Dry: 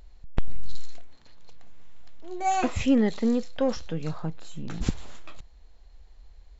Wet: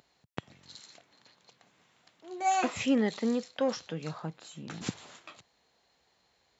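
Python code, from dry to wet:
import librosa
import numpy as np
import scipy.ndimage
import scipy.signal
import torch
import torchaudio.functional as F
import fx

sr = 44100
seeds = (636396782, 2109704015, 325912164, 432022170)

y = scipy.signal.sosfilt(scipy.signal.butter(4, 120.0, 'highpass', fs=sr, output='sos'), x)
y = fx.low_shelf(y, sr, hz=500.0, db=-7.0)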